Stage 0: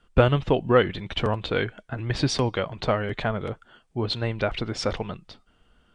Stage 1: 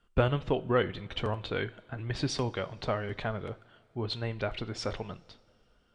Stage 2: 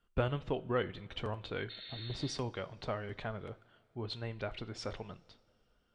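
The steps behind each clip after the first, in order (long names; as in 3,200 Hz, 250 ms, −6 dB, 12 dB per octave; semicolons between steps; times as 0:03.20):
coupled-rooms reverb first 0.37 s, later 3 s, from −19 dB, DRR 13.5 dB; level −7.5 dB
healed spectral selection 0:01.72–0:02.31, 1,300–4,400 Hz after; level −6.5 dB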